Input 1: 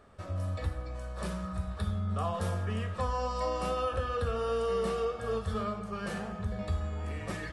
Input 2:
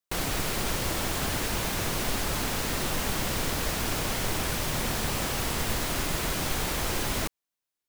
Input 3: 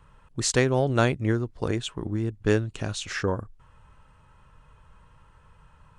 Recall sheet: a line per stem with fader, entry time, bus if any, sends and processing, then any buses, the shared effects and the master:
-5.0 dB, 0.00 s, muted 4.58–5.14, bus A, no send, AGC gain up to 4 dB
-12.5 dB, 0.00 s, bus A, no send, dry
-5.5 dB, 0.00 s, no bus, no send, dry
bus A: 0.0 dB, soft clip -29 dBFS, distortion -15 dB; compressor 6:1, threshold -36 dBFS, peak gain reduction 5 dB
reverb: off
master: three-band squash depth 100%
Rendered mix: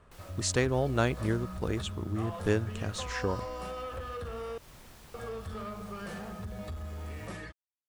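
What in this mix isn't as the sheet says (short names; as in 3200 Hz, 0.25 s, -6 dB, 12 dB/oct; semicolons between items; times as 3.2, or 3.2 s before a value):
stem 2 -12.5 dB -> -24.5 dB; master: missing three-band squash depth 100%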